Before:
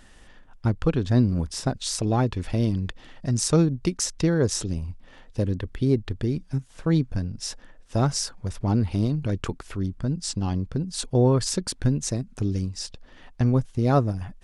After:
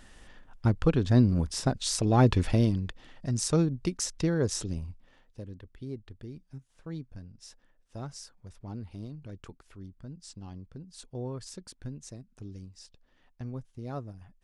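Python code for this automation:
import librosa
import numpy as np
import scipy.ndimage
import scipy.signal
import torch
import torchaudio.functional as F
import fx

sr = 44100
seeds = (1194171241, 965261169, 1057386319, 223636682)

y = fx.gain(x, sr, db=fx.line((2.12, -1.5), (2.31, 5.5), (2.86, -5.5), (4.8, -5.5), (5.42, -17.5)))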